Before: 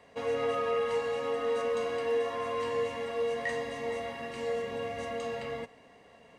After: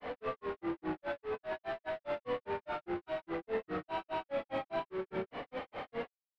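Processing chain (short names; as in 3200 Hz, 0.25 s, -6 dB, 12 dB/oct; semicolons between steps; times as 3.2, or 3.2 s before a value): Bessel high-pass 180 Hz, order 6; low shelf 370 Hz +8.5 dB; negative-ratio compressor -31 dBFS, ratio -0.5; random-step tremolo; overdrive pedal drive 36 dB, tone 7800 Hz, clips at -33 dBFS; grains 0.161 s, grains 4.9/s, spray 0.479 s, pitch spread up and down by 7 st; air absorption 430 m; gain +3 dB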